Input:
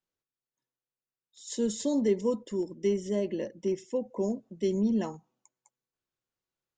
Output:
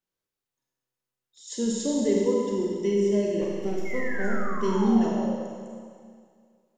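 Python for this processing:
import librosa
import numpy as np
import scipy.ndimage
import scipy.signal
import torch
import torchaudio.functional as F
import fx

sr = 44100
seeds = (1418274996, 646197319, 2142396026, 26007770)

y = fx.halfwave_gain(x, sr, db=-12.0, at=(3.41, 4.48))
y = fx.spec_paint(y, sr, seeds[0], shape='fall', start_s=3.85, length_s=1.52, low_hz=490.0, high_hz=2200.0, level_db=-39.0)
y = fx.rev_schroeder(y, sr, rt60_s=2.1, comb_ms=31, drr_db=-2.5)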